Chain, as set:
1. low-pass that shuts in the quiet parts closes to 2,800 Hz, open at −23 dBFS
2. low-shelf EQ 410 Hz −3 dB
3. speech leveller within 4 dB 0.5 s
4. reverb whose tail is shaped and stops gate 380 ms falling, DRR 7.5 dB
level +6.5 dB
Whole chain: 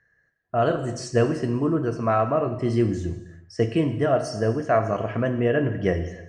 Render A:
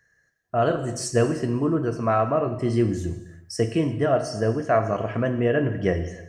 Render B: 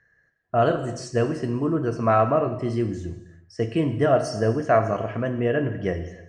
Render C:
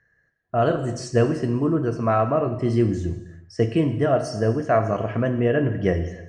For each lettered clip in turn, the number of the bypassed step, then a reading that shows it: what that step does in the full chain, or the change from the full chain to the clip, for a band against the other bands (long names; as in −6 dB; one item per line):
1, 8 kHz band +6.0 dB
3, change in momentary loudness spread +3 LU
2, 125 Hz band +2.0 dB